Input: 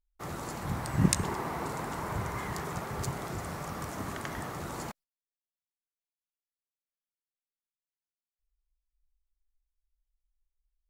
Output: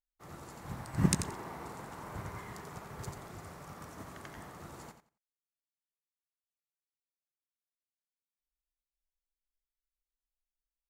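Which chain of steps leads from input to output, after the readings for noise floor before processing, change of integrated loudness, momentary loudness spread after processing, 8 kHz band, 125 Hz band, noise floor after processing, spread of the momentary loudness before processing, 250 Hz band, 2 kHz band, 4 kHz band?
below −85 dBFS, −5.0 dB, 18 LU, −4.5 dB, −4.5 dB, below −85 dBFS, 12 LU, −4.0 dB, −8.0 dB, −5.5 dB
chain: on a send: repeating echo 88 ms, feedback 22%, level −6 dB
on the sum: expander for the loud parts 1.5 to 1, over −48 dBFS
level −2.5 dB

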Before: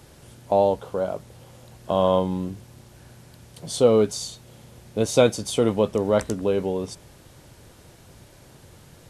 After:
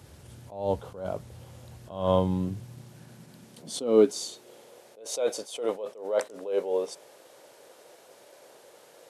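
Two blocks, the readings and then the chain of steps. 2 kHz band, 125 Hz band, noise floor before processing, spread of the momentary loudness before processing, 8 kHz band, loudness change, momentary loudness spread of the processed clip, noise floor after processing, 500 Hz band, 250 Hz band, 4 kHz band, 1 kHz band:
−9.0 dB, −5.5 dB, −51 dBFS, 16 LU, −5.0 dB, −6.0 dB, 23 LU, −55 dBFS, −6.0 dB, −6.0 dB, −6.5 dB, −8.0 dB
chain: high-pass filter sweep 77 Hz → 510 Hz, 0:01.99–0:04.83
level that may rise only so fast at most 110 dB per second
level −3 dB

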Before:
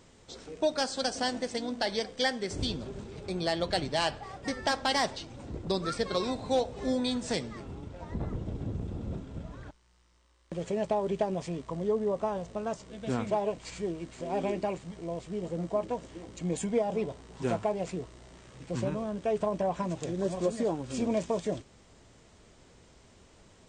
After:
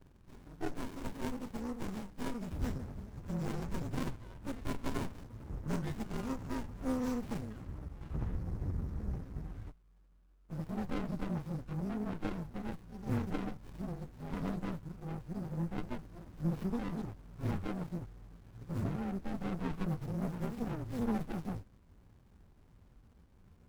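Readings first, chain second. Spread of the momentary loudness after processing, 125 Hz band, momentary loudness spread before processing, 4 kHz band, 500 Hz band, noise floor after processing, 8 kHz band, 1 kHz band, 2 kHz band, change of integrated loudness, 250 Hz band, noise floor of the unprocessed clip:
9 LU, 0.0 dB, 12 LU, −19.0 dB, −14.5 dB, −63 dBFS, −13.5 dB, −11.5 dB, −11.0 dB, −7.5 dB, −3.0 dB, −59 dBFS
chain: partials spread apart or drawn together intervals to 118%
phaser with its sweep stopped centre 1,300 Hz, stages 4
windowed peak hold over 65 samples
level +3.5 dB

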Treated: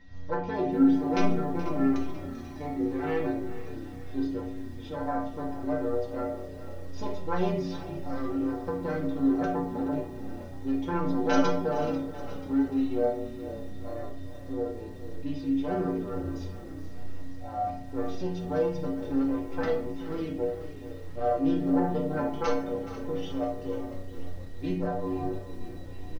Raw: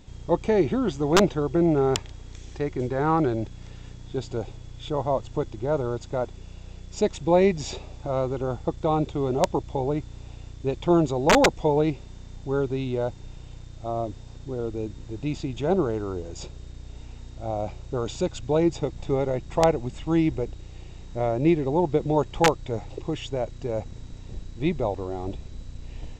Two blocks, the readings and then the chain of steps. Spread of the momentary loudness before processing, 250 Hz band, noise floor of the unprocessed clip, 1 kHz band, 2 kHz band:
21 LU, −1.5 dB, −43 dBFS, −5.5 dB, −7.0 dB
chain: phase distortion by the signal itself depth 0.32 ms
Butterworth low-pass 6,300 Hz 96 dB per octave
high-shelf EQ 4,400 Hz −6 dB
in parallel at +0.5 dB: downward compressor 6 to 1, threshold −32 dBFS, peak gain reduction 16 dB
on the sum: dynamic equaliser 350 Hz, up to +4 dB, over −30 dBFS, Q 1.1
pitch vibrato 6.6 Hz 16 cents
stiff-string resonator 88 Hz, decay 0.57 s, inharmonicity 0.008
steady tone 1,900 Hz −60 dBFS
on a send: echo with shifted repeats 489 ms, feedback 49%, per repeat −34 Hz, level −16.5 dB
on the sum: rectangular room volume 820 cubic metres, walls furnished, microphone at 2.1 metres
feedback echo at a low word length 425 ms, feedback 55%, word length 8 bits, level −15 dB

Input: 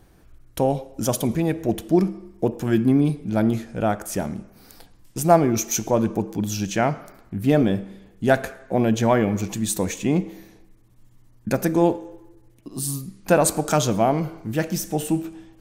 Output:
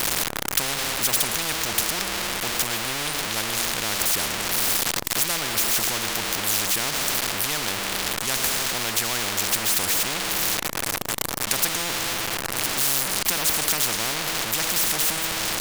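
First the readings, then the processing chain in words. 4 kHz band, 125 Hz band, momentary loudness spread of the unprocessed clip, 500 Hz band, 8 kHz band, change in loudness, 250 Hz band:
+14.0 dB, −12.5 dB, 10 LU, −11.0 dB, +8.0 dB, +0.5 dB, −14.0 dB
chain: converter with a step at zero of −26 dBFS
every bin compressed towards the loudest bin 10 to 1
level +1.5 dB

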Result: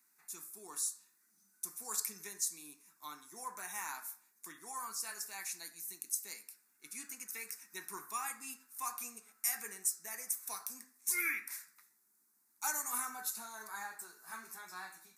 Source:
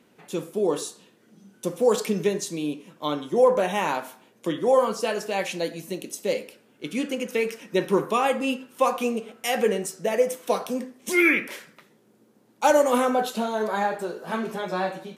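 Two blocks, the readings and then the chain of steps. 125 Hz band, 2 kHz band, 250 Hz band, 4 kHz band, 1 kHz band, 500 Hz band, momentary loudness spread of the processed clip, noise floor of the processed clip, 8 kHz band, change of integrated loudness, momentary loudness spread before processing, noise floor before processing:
below −30 dB, −14.5 dB, −31.0 dB, −14.5 dB, −18.5 dB, −36.5 dB, 13 LU, −73 dBFS, −0.5 dB, −14.5 dB, 12 LU, −60 dBFS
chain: first difference
phaser with its sweep stopped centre 1,300 Hz, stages 4
level +1 dB

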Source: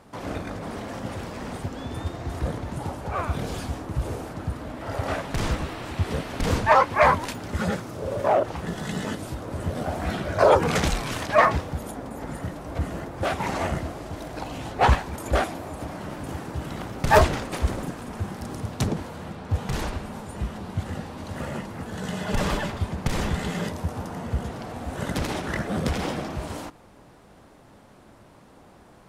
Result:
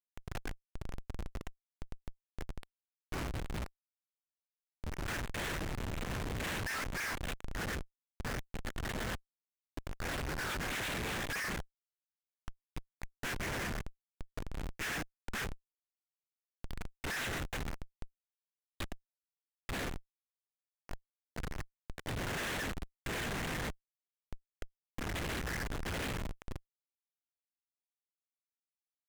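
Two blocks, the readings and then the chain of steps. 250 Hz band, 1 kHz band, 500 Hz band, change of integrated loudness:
−14.5 dB, −19.5 dB, −19.5 dB, −12.5 dB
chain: Chebyshev band-pass filter 1,600–3,800 Hz, order 3
comparator with hysteresis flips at −37.5 dBFS
highs frequency-modulated by the lows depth 0.41 ms
level +3 dB

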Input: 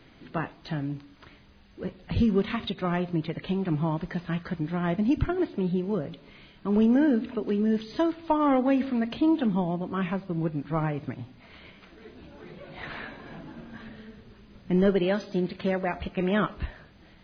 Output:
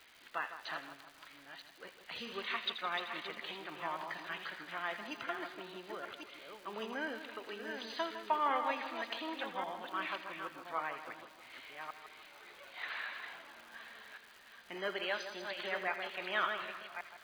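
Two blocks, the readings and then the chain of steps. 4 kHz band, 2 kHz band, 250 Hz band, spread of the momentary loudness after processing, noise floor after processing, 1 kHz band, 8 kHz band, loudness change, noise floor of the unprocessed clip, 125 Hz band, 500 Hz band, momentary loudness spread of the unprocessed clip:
0.0 dB, −1.0 dB, −24.5 dB, 16 LU, −59 dBFS, −4.5 dB, can't be measured, −12.5 dB, −54 dBFS, −32.5 dB, −14.0 dB, 18 LU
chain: delay that plays each chunk backwards 567 ms, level −6.5 dB
high-pass filter 1,100 Hz 12 dB per octave
surface crackle 260 per second −47 dBFS
on a send: echo with a time of its own for lows and highs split 1,600 Hz, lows 156 ms, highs 82 ms, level −10 dB
on the sum: level −1.5 dB

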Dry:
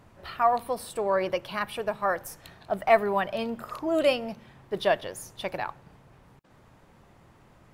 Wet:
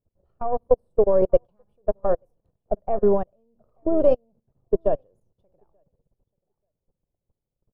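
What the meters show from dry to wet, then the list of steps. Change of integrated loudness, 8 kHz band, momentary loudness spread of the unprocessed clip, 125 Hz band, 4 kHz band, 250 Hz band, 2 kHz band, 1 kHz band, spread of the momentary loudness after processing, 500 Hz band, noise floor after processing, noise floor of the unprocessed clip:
+4.5 dB, below −30 dB, 15 LU, +5.5 dB, below −25 dB, +4.5 dB, below −20 dB, −5.5 dB, 11 LU, +5.5 dB, −85 dBFS, −57 dBFS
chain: gain on one half-wave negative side −3 dB
spectral tilt −4.5 dB per octave
output level in coarse steps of 20 dB
octave-band graphic EQ 500/2,000/4,000 Hz +11/−12/−7 dB
on a send: repeating echo 884 ms, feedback 15%, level −18 dB
on the sum: expander for the loud parts 2.5 to 1, over −34 dBFS
level +4 dB

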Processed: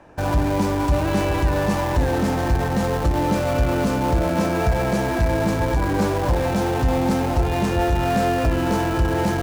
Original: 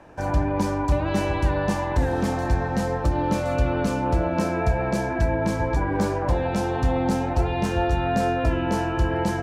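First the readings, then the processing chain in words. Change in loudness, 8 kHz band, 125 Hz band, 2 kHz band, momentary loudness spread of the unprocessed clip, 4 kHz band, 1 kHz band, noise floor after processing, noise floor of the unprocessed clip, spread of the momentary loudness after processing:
+3.0 dB, +5.0 dB, +3.0 dB, +3.0 dB, 2 LU, +5.5 dB, +2.5 dB, −23 dBFS, −27 dBFS, 1 LU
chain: in parallel at −6.5 dB: comparator with hysteresis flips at −30.5 dBFS

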